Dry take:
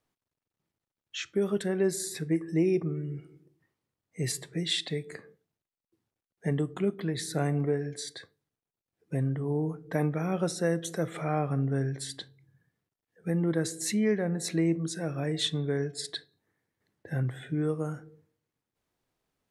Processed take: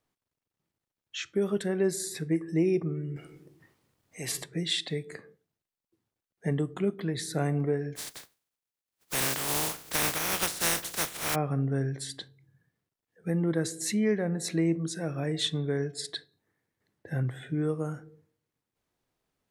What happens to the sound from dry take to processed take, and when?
3.16–4.44 s: spectrum-flattening compressor 2:1
7.95–11.34 s: spectral contrast reduction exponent 0.16

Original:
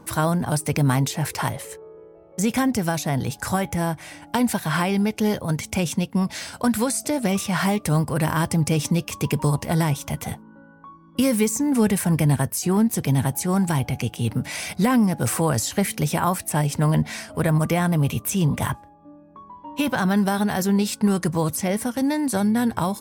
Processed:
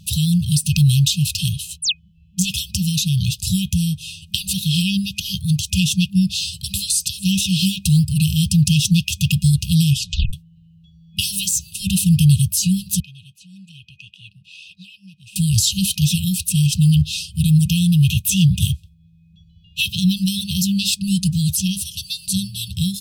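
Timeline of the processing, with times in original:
1.82–2.08 s: painted sound fall 230–11000 Hz -30 dBFS
9.93 s: tape stop 0.40 s
13.00–15.36 s: vowel filter a
whole clip: peaking EQ 3.7 kHz +9 dB 0.9 oct; FFT band-reject 200–2500 Hz; peaking EQ 75 Hz +8.5 dB 0.77 oct; trim +6 dB

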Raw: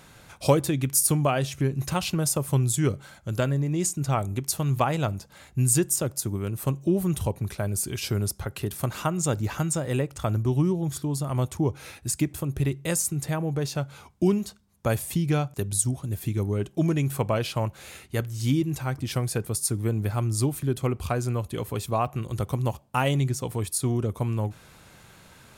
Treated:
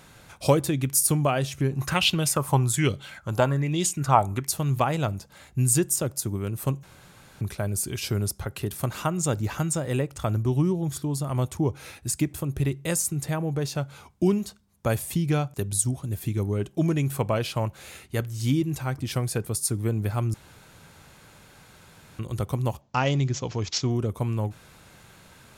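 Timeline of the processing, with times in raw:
1.72–4.47 s: sweeping bell 1.2 Hz 830–3500 Hz +15 dB
6.83–7.41 s: room tone
20.34–22.19 s: room tone
22.81–23.91 s: careless resampling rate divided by 3×, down none, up filtered

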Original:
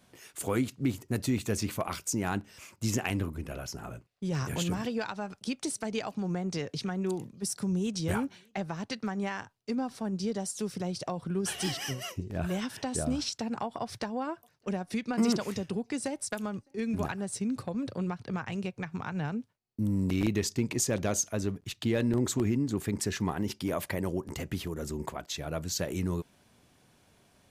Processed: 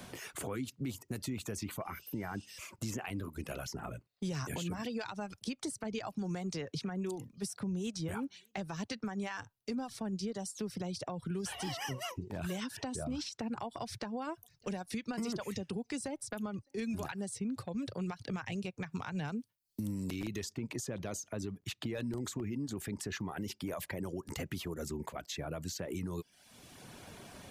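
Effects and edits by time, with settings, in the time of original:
1.81–2.43 s: spectral replace 2.4–11 kHz after
11.52–12.38 s: peaking EQ 910 Hz +10.5 dB 0.44 oct
whole clip: reverb removal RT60 0.52 s; peak limiter -26 dBFS; three bands compressed up and down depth 70%; trim -3.5 dB

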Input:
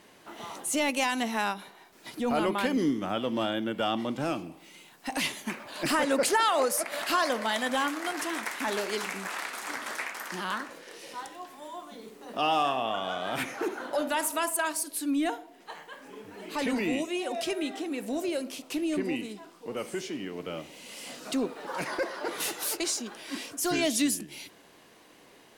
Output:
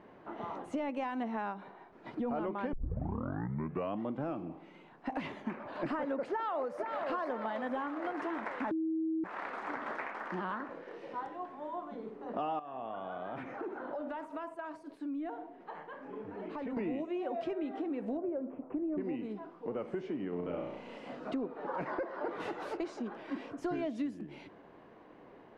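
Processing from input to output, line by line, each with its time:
2.73 s: tape start 1.31 s
6.30–7.10 s: echo throw 480 ms, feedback 60%, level -9.5 dB
8.71–9.24 s: bleep 321 Hz -22.5 dBFS
12.59–16.77 s: compression 4:1, threshold -39 dBFS
18.17–18.98 s: Gaussian low-pass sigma 5.6 samples
20.29–20.98 s: flutter echo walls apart 5.8 m, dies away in 0.64 s
whole clip: low-pass 1.2 kHz 12 dB/octave; compression 5:1, threshold -36 dBFS; trim +2.5 dB

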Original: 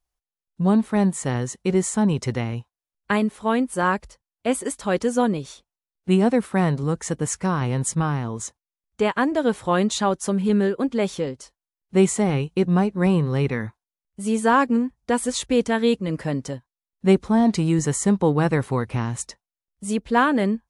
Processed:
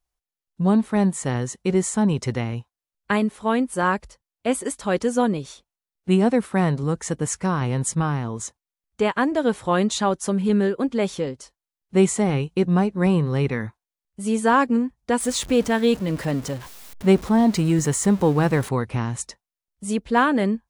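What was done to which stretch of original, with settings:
15.20–18.69 s: jump at every zero crossing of -33 dBFS

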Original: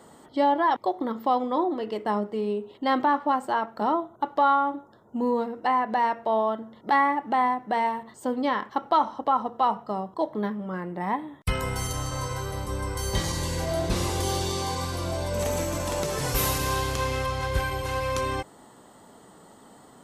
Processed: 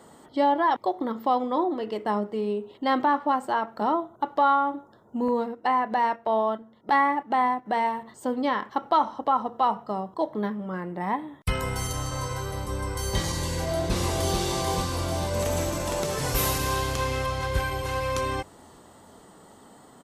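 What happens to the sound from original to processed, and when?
5.28–7.66 s: gate -35 dBFS, range -8 dB
13.59–14.38 s: echo throw 440 ms, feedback 70%, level -4.5 dB

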